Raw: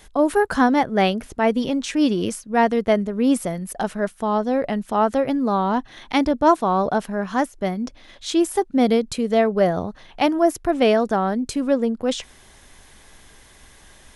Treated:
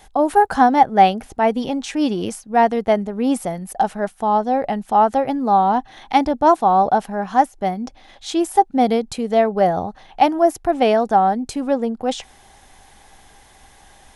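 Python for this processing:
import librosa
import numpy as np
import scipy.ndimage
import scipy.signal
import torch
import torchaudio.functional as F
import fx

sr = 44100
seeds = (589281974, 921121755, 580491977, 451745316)

y = fx.peak_eq(x, sr, hz=790.0, db=13.5, octaves=0.3)
y = F.gain(torch.from_numpy(y), -1.0).numpy()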